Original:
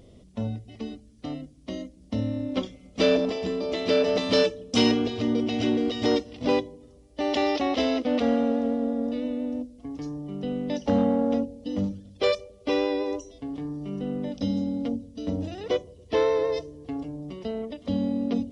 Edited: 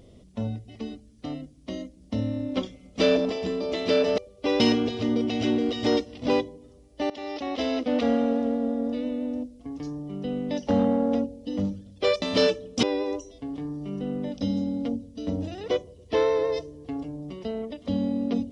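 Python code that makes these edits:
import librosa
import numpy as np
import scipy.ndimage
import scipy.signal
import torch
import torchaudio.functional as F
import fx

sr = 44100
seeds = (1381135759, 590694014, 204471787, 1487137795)

y = fx.edit(x, sr, fx.swap(start_s=4.18, length_s=0.61, other_s=12.41, other_length_s=0.42),
    fx.fade_in_from(start_s=7.29, length_s=0.81, floor_db=-18.5), tone=tone)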